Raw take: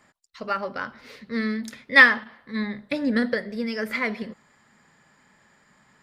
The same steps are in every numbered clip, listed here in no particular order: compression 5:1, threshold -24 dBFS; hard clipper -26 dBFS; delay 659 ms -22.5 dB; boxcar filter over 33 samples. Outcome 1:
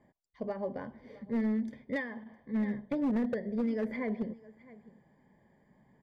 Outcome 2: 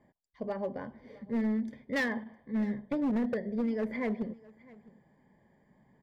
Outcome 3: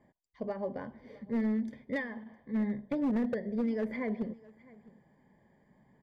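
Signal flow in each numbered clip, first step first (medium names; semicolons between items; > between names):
delay > compression > boxcar filter > hard clipper; boxcar filter > compression > hard clipper > delay; compression > boxcar filter > hard clipper > delay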